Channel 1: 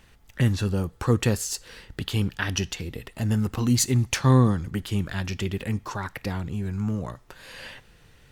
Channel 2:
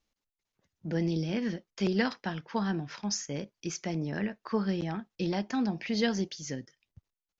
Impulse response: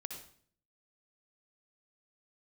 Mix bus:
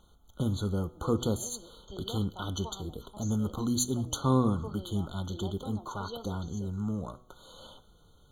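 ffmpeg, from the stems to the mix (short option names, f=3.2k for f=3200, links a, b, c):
-filter_complex "[0:a]bandreject=f=123.9:t=h:w=4,bandreject=f=247.8:t=h:w=4,bandreject=f=371.7:t=h:w=4,bandreject=f=495.6:t=h:w=4,bandreject=f=619.5:t=h:w=4,bandreject=f=743.4:t=h:w=4,bandreject=f=867.3:t=h:w=4,bandreject=f=991.2:t=h:w=4,bandreject=f=1.1151k:t=h:w=4,bandreject=f=1.239k:t=h:w=4,bandreject=f=1.3629k:t=h:w=4,bandreject=f=1.4868k:t=h:w=4,bandreject=f=1.6107k:t=h:w=4,bandreject=f=1.7346k:t=h:w=4,bandreject=f=1.8585k:t=h:w=4,bandreject=f=1.9824k:t=h:w=4,bandreject=f=2.1063k:t=h:w=4,bandreject=f=2.2302k:t=h:w=4,bandreject=f=2.3541k:t=h:w=4,bandreject=f=2.478k:t=h:w=4,bandreject=f=2.6019k:t=h:w=4,bandreject=f=2.7258k:t=h:w=4,bandreject=f=2.8497k:t=h:w=4,bandreject=f=2.9736k:t=h:w=4,bandreject=f=3.0975k:t=h:w=4,bandreject=f=3.2214k:t=h:w=4,bandreject=f=3.3453k:t=h:w=4,bandreject=f=3.4692k:t=h:w=4,volume=-5dB,asplit=2[a][b];[b]volume=-18dB[c];[1:a]highpass=410,bandreject=f=1.5k:w=6.1,adelay=100,volume=-9.5dB,asplit=2[d][e];[e]volume=-17.5dB[f];[2:a]atrim=start_sample=2205[g];[c][f]amix=inputs=2:normalize=0[h];[h][g]afir=irnorm=-1:irlink=0[i];[a][d][i]amix=inputs=3:normalize=0,equalizer=f=120:w=4.5:g=-7,afftfilt=real='re*eq(mod(floor(b*sr/1024/1500),2),0)':imag='im*eq(mod(floor(b*sr/1024/1500),2),0)':win_size=1024:overlap=0.75"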